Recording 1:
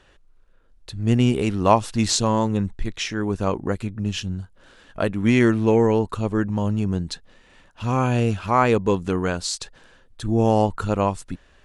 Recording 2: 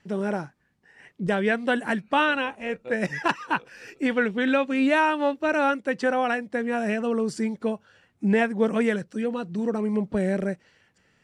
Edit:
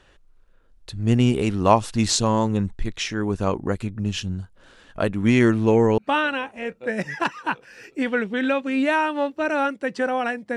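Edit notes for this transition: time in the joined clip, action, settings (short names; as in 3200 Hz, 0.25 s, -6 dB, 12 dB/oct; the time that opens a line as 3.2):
recording 1
5.98 switch to recording 2 from 2.02 s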